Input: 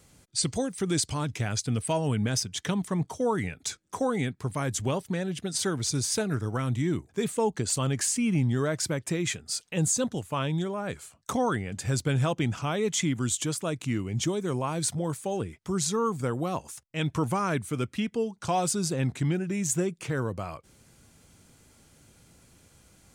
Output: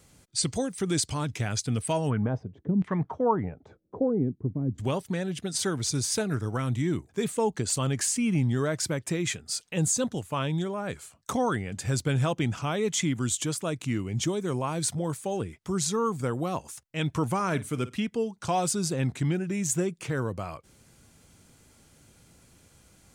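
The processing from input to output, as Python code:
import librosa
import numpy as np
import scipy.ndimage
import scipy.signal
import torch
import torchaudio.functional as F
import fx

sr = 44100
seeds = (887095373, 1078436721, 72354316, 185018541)

y = fx.filter_lfo_lowpass(x, sr, shape='saw_down', hz=fx.line((2.09, 1.5), (4.78, 0.24)), low_hz=240.0, high_hz=2400.0, q=1.9, at=(2.09, 4.78), fade=0.02)
y = fx.room_flutter(y, sr, wall_m=9.0, rt60_s=0.2, at=(17.34, 17.96))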